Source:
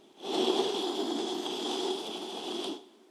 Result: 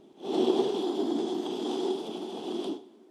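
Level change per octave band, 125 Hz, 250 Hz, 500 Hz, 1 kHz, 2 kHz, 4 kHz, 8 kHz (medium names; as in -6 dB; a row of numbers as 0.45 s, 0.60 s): +6.0 dB, +4.5 dB, +3.5 dB, -1.0 dB, -5.5 dB, -6.5 dB, -7.0 dB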